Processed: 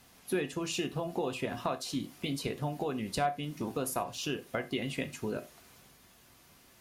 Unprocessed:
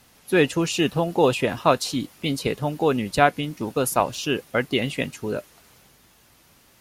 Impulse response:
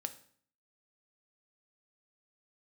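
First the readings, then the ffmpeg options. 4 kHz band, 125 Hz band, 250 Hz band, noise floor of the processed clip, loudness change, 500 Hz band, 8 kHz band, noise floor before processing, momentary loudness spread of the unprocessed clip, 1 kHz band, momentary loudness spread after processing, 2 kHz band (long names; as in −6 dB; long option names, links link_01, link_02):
−10.5 dB, −10.5 dB, −11.0 dB, −61 dBFS, −12.0 dB, −13.0 dB, −9.0 dB, −57 dBFS, 8 LU, −12.5 dB, 4 LU, −13.5 dB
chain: -filter_complex "[0:a]acompressor=threshold=-27dB:ratio=6[link_01];[1:a]atrim=start_sample=2205,atrim=end_sample=6174,asetrate=57330,aresample=44100[link_02];[link_01][link_02]afir=irnorm=-1:irlink=0"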